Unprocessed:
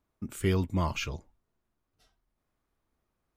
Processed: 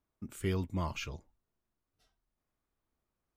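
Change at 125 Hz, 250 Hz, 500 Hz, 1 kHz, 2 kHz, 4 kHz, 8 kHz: −6.0, −6.0, −6.0, −6.0, −6.0, −6.0, −6.0 decibels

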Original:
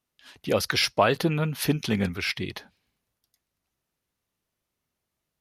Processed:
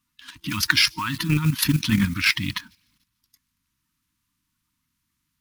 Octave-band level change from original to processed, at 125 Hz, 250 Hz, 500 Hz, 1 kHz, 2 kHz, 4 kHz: +5.5, +4.0, −19.5, −3.5, +6.5, +6.0 decibels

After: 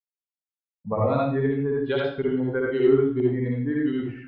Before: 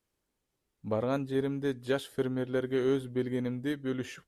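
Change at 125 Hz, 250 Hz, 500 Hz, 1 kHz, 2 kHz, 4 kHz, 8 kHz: +9.0 dB, +7.5 dB, +8.5 dB, +9.5 dB, +6.5 dB, +2.0 dB, below −25 dB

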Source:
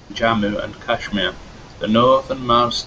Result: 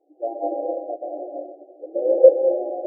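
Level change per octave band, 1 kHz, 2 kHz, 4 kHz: −14.0 dB, below −40 dB, below −40 dB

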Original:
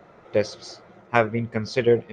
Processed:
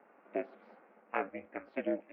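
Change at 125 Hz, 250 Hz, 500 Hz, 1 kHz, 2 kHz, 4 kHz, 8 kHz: −30.5 dB, −12.5 dB, −16.5 dB, −13.0 dB, −15.0 dB, below −25 dB, below −35 dB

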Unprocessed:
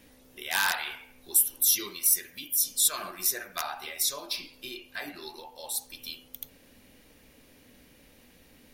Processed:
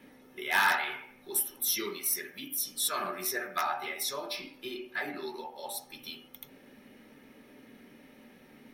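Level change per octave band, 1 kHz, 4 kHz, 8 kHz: +4.5, −4.0, −8.0 decibels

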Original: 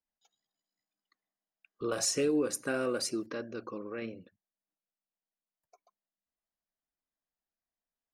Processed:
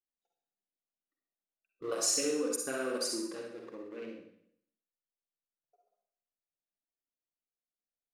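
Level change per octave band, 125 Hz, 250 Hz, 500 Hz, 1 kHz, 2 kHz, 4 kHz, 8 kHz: −12.0, −4.5, −2.5, −3.0, −3.0, +1.0, +2.5 decibels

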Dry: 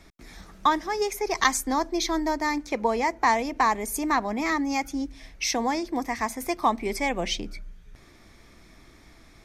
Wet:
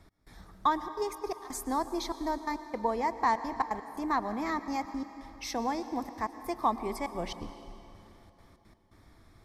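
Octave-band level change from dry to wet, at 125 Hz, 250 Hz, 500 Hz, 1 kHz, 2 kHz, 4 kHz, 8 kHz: −5.0, −7.0, −6.5, −5.5, −12.0, −12.0, −13.0 decibels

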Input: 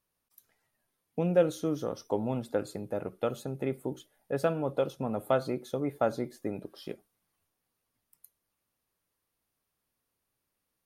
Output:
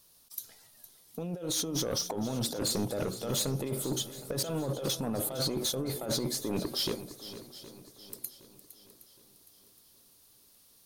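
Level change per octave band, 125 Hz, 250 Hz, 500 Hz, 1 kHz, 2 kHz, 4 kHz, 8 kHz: +1.5, −0.5, −5.5, −5.5, −3.0, +16.5, +18.0 decibels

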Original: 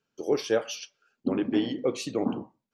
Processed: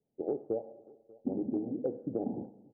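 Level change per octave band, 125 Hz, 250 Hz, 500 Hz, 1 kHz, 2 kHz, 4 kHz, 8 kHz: −5.5 dB, −6.5 dB, −7.5 dB, −10.0 dB, below −35 dB, below −40 dB, below −40 dB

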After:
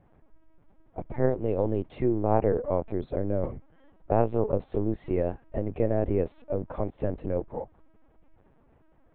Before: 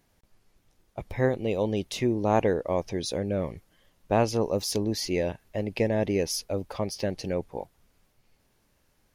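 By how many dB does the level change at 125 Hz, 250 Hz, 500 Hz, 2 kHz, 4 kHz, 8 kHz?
+0.5 dB, −1.0 dB, 0.0 dB, −10.0 dB, below −25 dB, below −40 dB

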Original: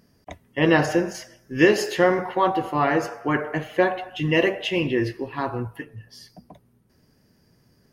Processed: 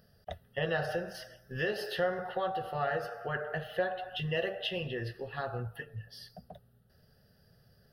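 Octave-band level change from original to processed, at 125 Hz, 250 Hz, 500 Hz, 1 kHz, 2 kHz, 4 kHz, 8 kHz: −10.0 dB, −19.5 dB, −11.5 dB, −11.5 dB, −11.0 dB, −8.0 dB, below −15 dB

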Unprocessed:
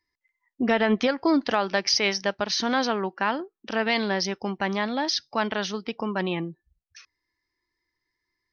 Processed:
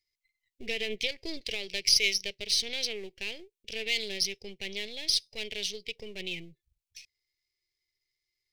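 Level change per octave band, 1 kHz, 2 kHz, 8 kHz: −29.5 dB, −6.5 dB, can't be measured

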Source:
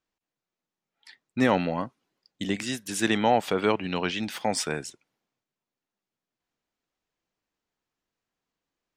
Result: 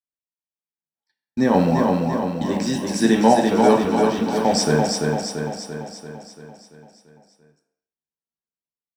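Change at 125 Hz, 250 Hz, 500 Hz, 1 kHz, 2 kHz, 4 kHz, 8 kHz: +10.5, +10.5, +9.5, +8.0, +2.5, +5.0, +6.5 decibels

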